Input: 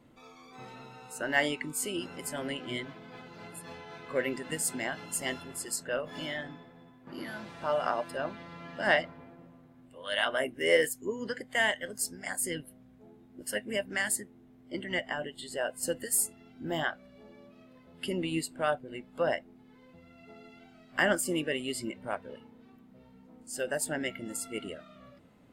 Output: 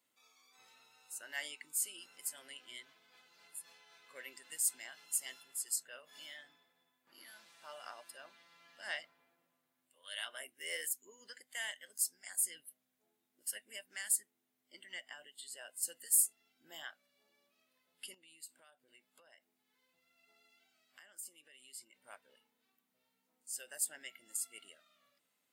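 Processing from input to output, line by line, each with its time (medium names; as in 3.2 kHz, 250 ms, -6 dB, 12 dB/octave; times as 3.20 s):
18.14–22.00 s: compression 12:1, threshold -40 dBFS
whole clip: differentiator; trim -2.5 dB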